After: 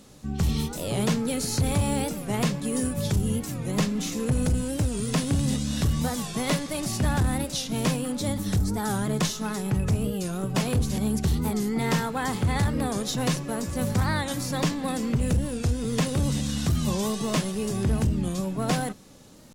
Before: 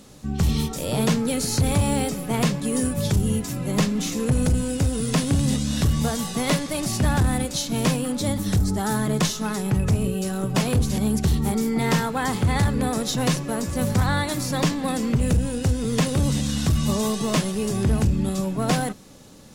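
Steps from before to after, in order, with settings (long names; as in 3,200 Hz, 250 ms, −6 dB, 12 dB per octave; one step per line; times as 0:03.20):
wow of a warped record 45 rpm, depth 160 cents
level −3.5 dB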